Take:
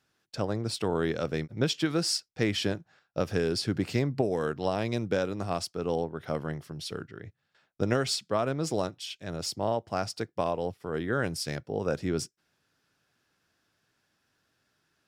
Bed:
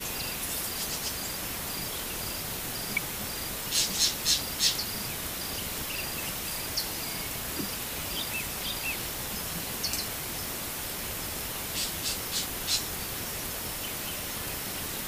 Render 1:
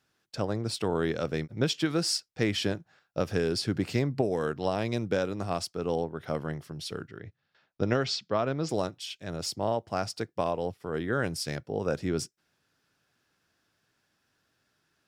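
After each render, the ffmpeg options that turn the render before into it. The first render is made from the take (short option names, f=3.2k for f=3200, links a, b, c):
-filter_complex "[0:a]asettb=1/sr,asplit=3[a][b][c];[a]atrim=end=7.194[d];[b]atrim=start=7.19:end=8.69,asetpts=PTS-STARTPTS,afade=t=in:d=0.004:c=qsin,afade=t=out:st=1.496:d=0.004:c=qsin,lowpass=f=5.8k:w=0.5412,lowpass=f=5.8k:w=1.3066[e];[c]atrim=start=8.686[f];[d][e]acrossfade=d=0.004:c1=hsin:c2=qsin[g];[g][f]acrossfade=d=0.004:c1=qsin:c2=hsin"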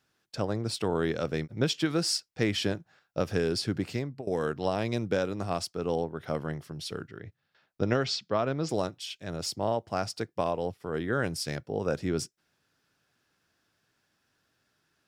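-filter_complex "[0:a]asplit=2[a][b];[a]atrim=end=4.27,asetpts=PTS-STARTPTS,afade=t=out:st=3.44:d=0.83:c=qsin:silence=0.11885[c];[b]atrim=start=4.27,asetpts=PTS-STARTPTS,afade=t=in:d=0.004:c=hsin:silence=0.11885[d];[c][d]concat=n=2:v=0:a=1"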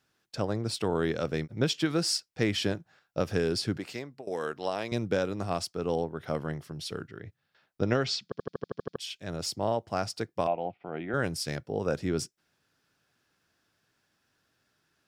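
-filter_complex "[0:a]asettb=1/sr,asplit=3[a][b][c];[a]atrim=end=3.774[d];[b]atrim=start=3.77:end=4.92,asetpts=PTS-STARTPTS,afade=t=in:d=0.004:c=qsin,afade=t=out:st=1.146:d=0.004:c=qsin,highpass=f=520:p=1[e];[c]atrim=start=4.916[f];[d][e]acrossfade=d=0.004:c1=hsin:c2=qsin[g];[g][f]acrossfade=d=0.004:c1=qsin:c2=hsin,asettb=1/sr,asplit=3[h][i][j];[h]atrim=end=10.474[k];[i]atrim=start=10.47:end=11.14,asetpts=PTS-STARTPTS,afade=t=in:d=0.004:c=qsin,afade=t=out:st=0.666:d=0.004:c=qsin,highpass=190,equalizer=f=250:t=q:w=4:g=-4,equalizer=f=440:t=q:w=4:g=-9,equalizer=f=720:t=q:w=4:g=8,equalizer=f=1.1k:t=q:w=4:g=-8,equalizer=f=1.7k:t=q:w=4:g=-8,equalizer=f=2.4k:t=q:w=4:g=7,lowpass=f=2.7k:w=0.5412,lowpass=f=2.7k:w=1.3066[l];[j]atrim=start=11.136[m];[k][l]acrossfade=d=0.004:c1=hsin:c2=qsin[n];[n][m]acrossfade=d=0.004:c1=qsin:c2=hsin,asplit=10[o][p][q][r][s][t][u][v][w][x];[o]atrim=end=8.322[y];[p]atrim=start=8.238:end=8.322[z];[q]atrim=start=8.238:end=8.322[aa];[r]atrim=start=8.238:end=8.322[ab];[s]atrim=start=8.238:end=8.322[ac];[t]atrim=start=8.238:end=8.322[ad];[u]atrim=start=8.238:end=8.322[ae];[v]atrim=start=8.238:end=8.322[af];[w]atrim=start=8.238:end=8.322[ag];[x]atrim=start=8.958[ah];[y][z]acrossfade=d=0.004:c1=hsin:c2=hsin[ai];[ai][aa]acrossfade=d=0.004:c1=hsin:c2=hsin[aj];[aj][ab]acrossfade=d=0.004:c1=hsin:c2=hsin[ak];[ak][ac]acrossfade=d=0.004:c1=hsin:c2=hsin[al];[al][ad]acrossfade=d=0.004:c1=hsin:c2=hsin[am];[am][ae]acrossfade=d=0.004:c1=hsin:c2=hsin[an];[an][af]acrossfade=d=0.004:c1=hsin:c2=hsin[ao];[ao][ag]acrossfade=d=0.004:c1=hsin:c2=hsin[ap];[ap][ah]acrossfade=d=0.004:c1=hsin:c2=hsin"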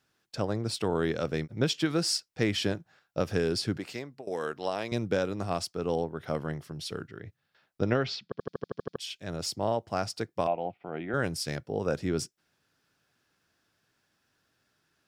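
-filter_complex "[0:a]asettb=1/sr,asplit=3[a][b][c];[a]atrim=end=7.904[d];[b]atrim=start=7.9:end=8.41,asetpts=PTS-STARTPTS,afade=t=in:d=0.004:c=qsin,afade=t=out:st=0.506:d=0.004:c=qsin,lowpass=3.8k[e];[c]atrim=start=8.406[f];[d][e]acrossfade=d=0.004:c1=hsin:c2=qsin[g];[g][f]acrossfade=d=0.004:c1=qsin:c2=hsin"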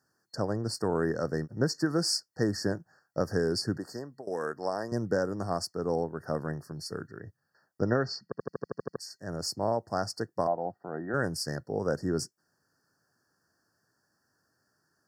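-af "afftfilt=real='re*(1-between(b*sr/4096,1900,4300))':imag='im*(1-between(b*sr/4096,1900,4300))':win_size=4096:overlap=0.75,highpass=78"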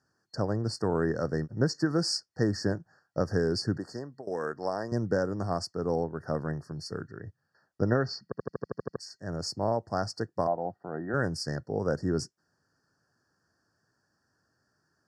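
-af "lowpass=6.9k,lowshelf=f=97:g=8"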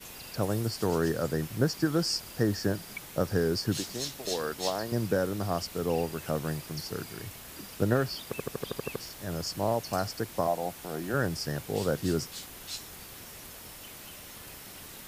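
-filter_complex "[1:a]volume=-11dB[a];[0:a][a]amix=inputs=2:normalize=0"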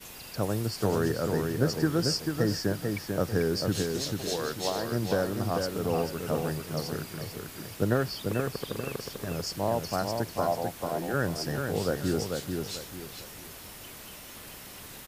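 -filter_complex "[0:a]asplit=2[a][b];[b]adelay=442,lowpass=f=4k:p=1,volume=-4.5dB,asplit=2[c][d];[d]adelay=442,lowpass=f=4k:p=1,volume=0.32,asplit=2[e][f];[f]adelay=442,lowpass=f=4k:p=1,volume=0.32,asplit=2[g][h];[h]adelay=442,lowpass=f=4k:p=1,volume=0.32[i];[a][c][e][g][i]amix=inputs=5:normalize=0"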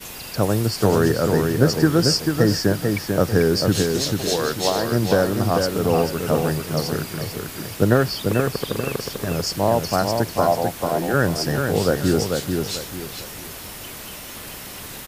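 -af "volume=9.5dB"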